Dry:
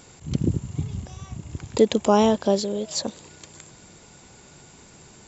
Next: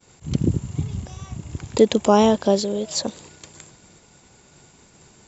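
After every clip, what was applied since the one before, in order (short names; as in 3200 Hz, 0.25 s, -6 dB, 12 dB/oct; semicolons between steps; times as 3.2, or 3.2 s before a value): expander -43 dBFS; gain +2.5 dB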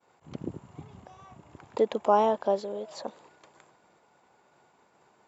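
band-pass 870 Hz, Q 1.2; gain -3 dB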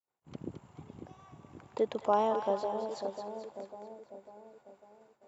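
split-band echo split 790 Hz, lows 0.547 s, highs 0.217 s, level -7 dB; expander -51 dBFS; gain -5.5 dB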